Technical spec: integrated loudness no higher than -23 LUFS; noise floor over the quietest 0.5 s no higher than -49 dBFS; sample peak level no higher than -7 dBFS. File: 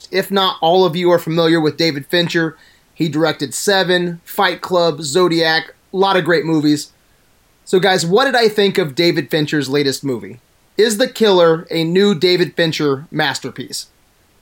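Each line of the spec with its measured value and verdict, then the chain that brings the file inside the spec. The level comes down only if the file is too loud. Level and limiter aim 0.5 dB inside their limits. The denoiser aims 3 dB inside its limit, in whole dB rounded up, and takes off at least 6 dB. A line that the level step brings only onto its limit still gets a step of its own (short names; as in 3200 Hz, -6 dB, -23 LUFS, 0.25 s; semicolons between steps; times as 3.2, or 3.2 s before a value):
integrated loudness -15.0 LUFS: fail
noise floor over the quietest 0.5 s -54 dBFS: OK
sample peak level -2.5 dBFS: fail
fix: gain -8.5 dB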